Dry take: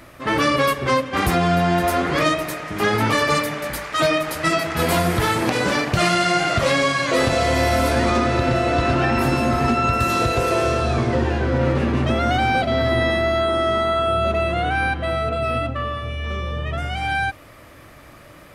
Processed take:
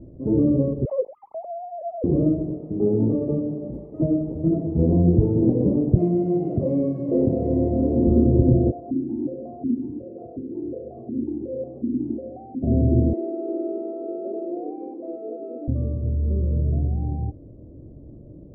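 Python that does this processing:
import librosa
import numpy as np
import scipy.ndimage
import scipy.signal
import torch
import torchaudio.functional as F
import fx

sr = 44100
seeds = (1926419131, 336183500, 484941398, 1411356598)

y = fx.sine_speech(x, sr, at=(0.85, 2.04))
y = fx.low_shelf(y, sr, hz=110.0, db=-11.5, at=(2.58, 4.0))
y = fx.weighting(y, sr, curve='D', at=(5.96, 8.07))
y = fx.vowel_held(y, sr, hz=5.5, at=(8.7, 12.62), fade=0.02)
y = fx.steep_highpass(y, sr, hz=320.0, slope=36, at=(13.13, 15.68))
y = scipy.signal.sosfilt(scipy.signal.cheby2(4, 60, 1400.0, 'lowpass', fs=sr, output='sos'), y)
y = F.gain(torch.from_numpy(y), 5.5).numpy()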